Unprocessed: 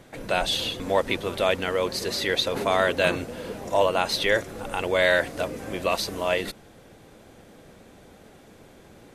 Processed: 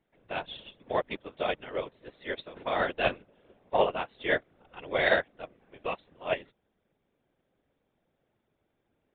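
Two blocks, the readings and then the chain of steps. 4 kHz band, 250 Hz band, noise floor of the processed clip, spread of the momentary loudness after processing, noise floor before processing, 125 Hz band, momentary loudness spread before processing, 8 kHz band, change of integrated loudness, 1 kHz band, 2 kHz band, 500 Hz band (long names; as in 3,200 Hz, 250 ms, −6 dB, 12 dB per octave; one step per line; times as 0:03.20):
−12.5 dB, −9.0 dB, −78 dBFS, 16 LU, −51 dBFS, −10.5 dB, 9 LU, below −40 dB, −6.5 dB, −5.5 dB, −6.0 dB, −7.0 dB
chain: random phases in short frames
downsampling to 8,000 Hz
expander for the loud parts 2.5 to 1, over −34 dBFS
level −1.5 dB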